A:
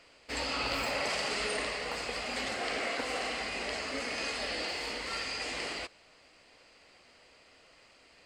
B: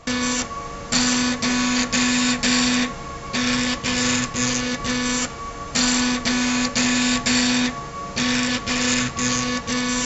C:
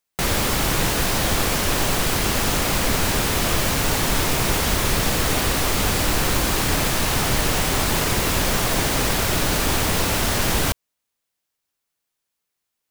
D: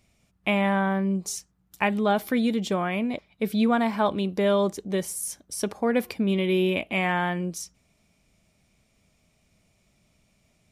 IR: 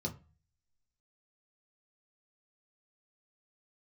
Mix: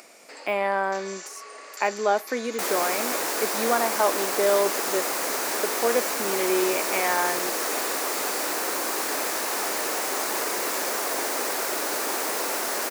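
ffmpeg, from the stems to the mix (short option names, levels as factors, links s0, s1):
-filter_complex "[0:a]volume=0.224[s0];[1:a]highpass=f=1100:w=0.5412,highpass=f=1100:w=1.3066,alimiter=limit=0.141:level=0:latency=1,adelay=850,volume=0.266[s1];[2:a]adelay=2400,volume=0.668[s2];[3:a]deesser=0.75,volume=1.26[s3];[s0][s1][s2][s3]amix=inputs=4:normalize=0,highpass=f=340:w=0.5412,highpass=f=340:w=1.3066,equalizer=f=3200:t=o:w=0.81:g=-8.5,acompressor=mode=upward:threshold=0.0178:ratio=2.5"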